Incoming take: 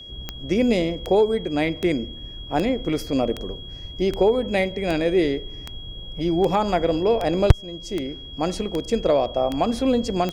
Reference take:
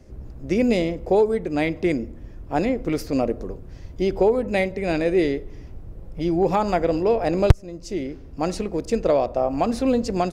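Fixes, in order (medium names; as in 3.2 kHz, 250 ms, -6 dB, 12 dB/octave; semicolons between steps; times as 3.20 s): de-click; band-stop 3.3 kHz, Q 30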